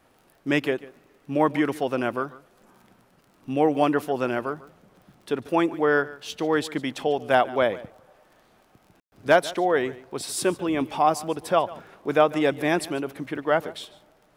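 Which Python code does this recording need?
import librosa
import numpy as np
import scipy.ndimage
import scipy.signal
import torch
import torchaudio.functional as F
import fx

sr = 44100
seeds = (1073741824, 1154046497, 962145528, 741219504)

y = fx.fix_declip(x, sr, threshold_db=-5.5)
y = fx.fix_declick_ar(y, sr, threshold=6.5)
y = fx.fix_ambience(y, sr, seeds[0], print_start_s=2.93, print_end_s=3.43, start_s=9.0, end_s=9.12)
y = fx.fix_echo_inverse(y, sr, delay_ms=145, level_db=-19.0)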